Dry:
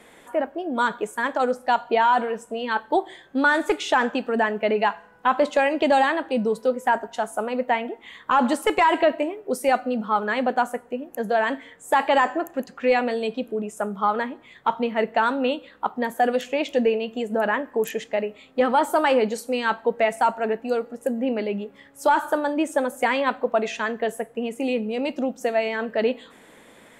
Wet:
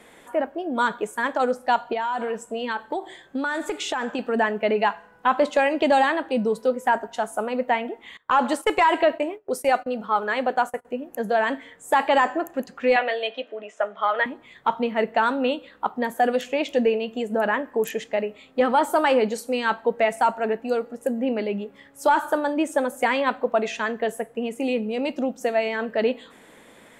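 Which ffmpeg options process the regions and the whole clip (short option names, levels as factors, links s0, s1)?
-filter_complex "[0:a]asettb=1/sr,asplit=3[s0][s1][s2];[s0]atrim=end=1.924[s3];[s1]atrim=start=1.92:end=4.19,asetpts=PTS-STARTPTS,afade=t=in:d=0.004:c=qsin,afade=t=out:st=2.266:d=0.004:c=qsin,equalizer=f=7500:w=5.6:g=6,acompressor=threshold=0.0794:ratio=10:attack=3.2:release=140:knee=1:detection=peak[s4];[s2]atrim=start=4.186[s5];[s3][s4]acrossfade=d=0.004:c1=hsin:c2=qsin[s6];[s6][s5]acrossfade=d=0.004:c1=qsin:c2=hsin,asettb=1/sr,asplit=3[s7][s8][s9];[s7]atrim=end=8.174[s10];[s8]atrim=start=8.17:end=10.85,asetpts=PTS-STARTPTS,afade=t=in:d=0.004:c=qsin,afade=t=out:st=2.676:d=0.004:c=qsin,agate=range=0.1:threshold=0.0158:ratio=16:release=100:detection=peak,equalizer=f=220:t=o:w=0.58:g=-7[s11];[s9]atrim=start=10.846[s12];[s10][s11]acrossfade=d=0.004:c1=hsin:c2=qsin[s13];[s13][s12]acrossfade=d=0.004:c1=qsin:c2=hsin,asettb=1/sr,asplit=3[s14][s15][s16];[s14]atrim=end=12.964[s17];[s15]atrim=start=12.96:end=14.26,asetpts=PTS-STARTPTS,afade=t=in:d=0.004:c=qsin,afade=t=out:st=1.296:d=0.004:c=qsin,highpass=f=370:w=0.5412,highpass=f=370:w=1.3066,equalizer=f=390:t=q:w=4:g=-9,equalizer=f=620:t=q:w=4:g=6,equalizer=f=880:t=q:w=4:g=-3,equalizer=f=1900:t=q:w=4:g=9,equalizer=f=3100:t=q:w=4:g=7,equalizer=f=4800:t=q:w=4:g=-6,lowpass=f=5400:w=0.5412,lowpass=f=5400:w=1.3066,asplit=2[s18][s19];[s19]adelay=15,volume=0.266[s20];[s18][s20]amix=inputs=2:normalize=0,atrim=end_sample=57330[s21];[s16]atrim=start=14.256[s22];[s17][s21]acrossfade=d=0.004:c1=hsin:c2=qsin[s23];[s23][s22]acrossfade=d=0.004:c1=qsin:c2=hsin"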